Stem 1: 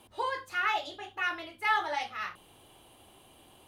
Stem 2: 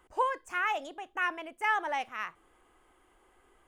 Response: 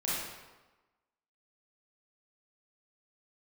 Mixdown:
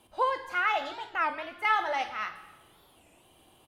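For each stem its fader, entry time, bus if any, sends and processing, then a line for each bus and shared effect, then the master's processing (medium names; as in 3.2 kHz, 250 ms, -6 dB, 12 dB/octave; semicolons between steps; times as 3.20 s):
-6.0 dB, 0.00 s, send -9 dB, none
+1.0 dB, 6.8 ms, polarity flipped, no send, steep low-pass 5.4 kHz; expander -52 dBFS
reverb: on, RT60 1.2 s, pre-delay 28 ms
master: warped record 33 1/3 rpm, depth 250 cents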